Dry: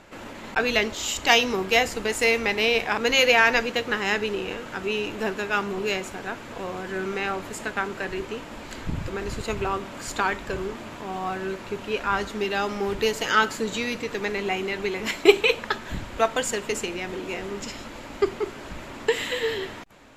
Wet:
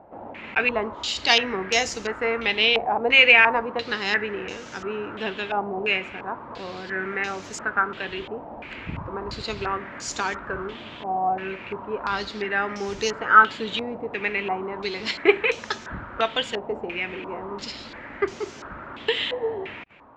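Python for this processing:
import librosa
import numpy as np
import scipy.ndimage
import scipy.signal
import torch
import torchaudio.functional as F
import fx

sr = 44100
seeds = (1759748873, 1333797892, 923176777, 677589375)

y = scipy.signal.sosfilt(scipy.signal.butter(2, 47.0, 'highpass', fs=sr, output='sos'), x)
y = fx.filter_held_lowpass(y, sr, hz=2.9, low_hz=770.0, high_hz=6000.0)
y = y * 10.0 ** (-3.0 / 20.0)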